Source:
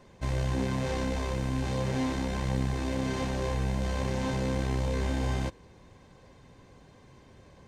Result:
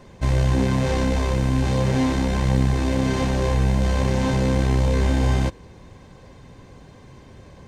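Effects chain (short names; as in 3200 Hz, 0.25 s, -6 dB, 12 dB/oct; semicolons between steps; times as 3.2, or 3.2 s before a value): low shelf 240 Hz +3.5 dB; gain +7.5 dB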